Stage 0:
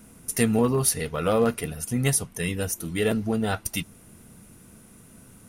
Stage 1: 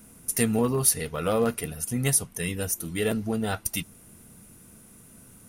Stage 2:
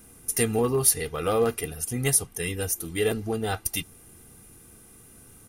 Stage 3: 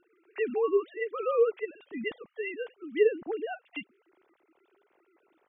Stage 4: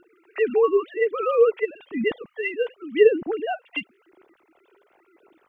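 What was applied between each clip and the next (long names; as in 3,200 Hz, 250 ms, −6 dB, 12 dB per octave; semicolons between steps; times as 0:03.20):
high-shelf EQ 8,100 Hz +7 dB; level −2.5 dB
comb filter 2.5 ms, depth 47%
three sine waves on the formant tracks; level −4 dB
phase shifter 0.95 Hz, delay 2.2 ms, feedback 42%; level +8 dB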